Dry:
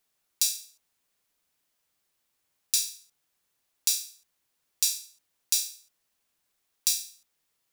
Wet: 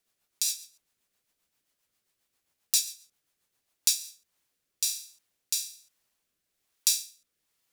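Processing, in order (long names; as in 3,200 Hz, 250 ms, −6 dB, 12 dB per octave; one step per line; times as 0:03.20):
rotating-speaker cabinet horn 7.5 Hz, later 1.2 Hz, at 0:03.56
level +2 dB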